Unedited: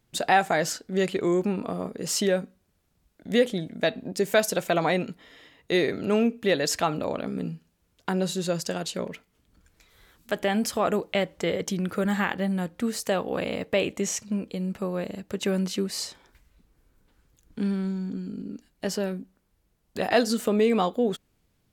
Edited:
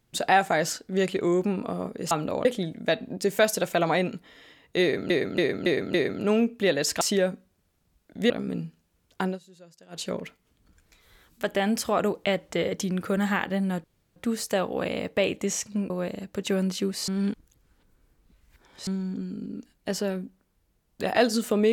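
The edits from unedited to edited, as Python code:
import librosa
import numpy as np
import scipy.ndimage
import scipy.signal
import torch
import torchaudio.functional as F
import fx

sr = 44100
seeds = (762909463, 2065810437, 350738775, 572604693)

y = fx.edit(x, sr, fx.swap(start_s=2.11, length_s=1.29, other_s=6.84, other_length_s=0.34),
    fx.repeat(start_s=5.77, length_s=0.28, count=5),
    fx.fade_down_up(start_s=8.13, length_s=0.78, db=-24.0, fade_s=0.14),
    fx.insert_room_tone(at_s=12.72, length_s=0.32),
    fx.cut(start_s=14.46, length_s=0.4),
    fx.reverse_span(start_s=16.04, length_s=1.79), tone=tone)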